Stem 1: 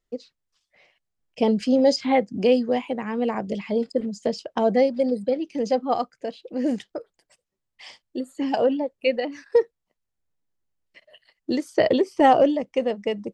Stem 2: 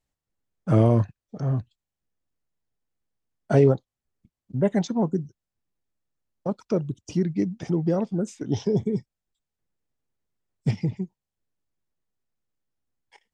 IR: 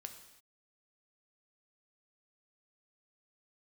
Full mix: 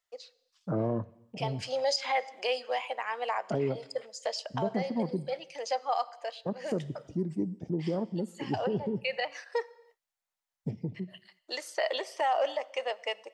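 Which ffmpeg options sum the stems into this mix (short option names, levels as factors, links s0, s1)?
-filter_complex "[0:a]highpass=f=690:w=0.5412,highpass=f=690:w=1.3066,volume=0.891,asplit=2[s0][s1];[s1]volume=0.501[s2];[1:a]afwtdn=0.0178,acrossover=split=210|1600[s3][s4][s5];[s3]acompressor=threshold=0.0251:ratio=4[s6];[s4]acompressor=threshold=0.0891:ratio=4[s7];[s5]acompressor=threshold=0.00158:ratio=4[s8];[s6][s7][s8]amix=inputs=3:normalize=0,volume=0.422,asplit=3[s9][s10][s11];[s10]volume=0.473[s12];[s11]apad=whole_len=588189[s13];[s0][s13]sidechaincompress=threshold=0.00501:ratio=8:attack=48:release=145[s14];[2:a]atrim=start_sample=2205[s15];[s2][s12]amix=inputs=2:normalize=0[s16];[s16][s15]afir=irnorm=-1:irlink=0[s17];[s14][s9][s17]amix=inputs=3:normalize=0,alimiter=limit=0.1:level=0:latency=1:release=68"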